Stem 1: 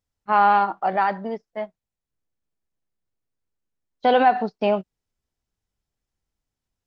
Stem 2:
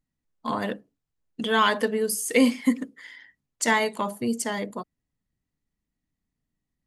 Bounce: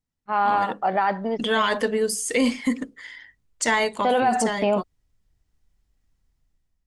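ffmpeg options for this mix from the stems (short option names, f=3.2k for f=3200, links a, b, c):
-filter_complex "[0:a]volume=-6dB[a];[1:a]lowpass=f=9.4k:w=0.5412,lowpass=f=9.4k:w=1.3066,asubboost=boost=6.5:cutoff=79,volume=-5.5dB[b];[a][b]amix=inputs=2:normalize=0,dynaudnorm=f=320:g=5:m=10dB,alimiter=limit=-12dB:level=0:latency=1:release=31"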